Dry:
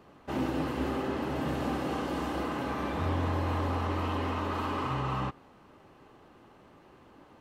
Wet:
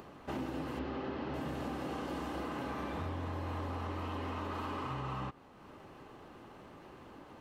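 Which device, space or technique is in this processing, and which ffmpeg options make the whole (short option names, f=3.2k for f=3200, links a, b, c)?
upward and downward compression: -filter_complex "[0:a]acompressor=mode=upward:threshold=-44dB:ratio=2.5,acompressor=threshold=-34dB:ratio=6,asettb=1/sr,asplit=3[a][b][c];[a]atrim=end=0.794[d];[b]atrim=start=0.79:end=1.34,asetpts=PTS-STARTPTS,afade=t=in:d=0.004:c=qsin,afade=t=out:st=0.546:d=0.004:c=qsin,lowpass=f=5.1k:w=0.5412,lowpass=f=5.1k:w=1.3066[e];[c]atrim=start=1.336[f];[d][e]acrossfade=d=0.004:c1=hsin:c2=qsin[g];[g][f]acrossfade=d=0.004:c1=qsin:c2=hsin,volume=-1.5dB"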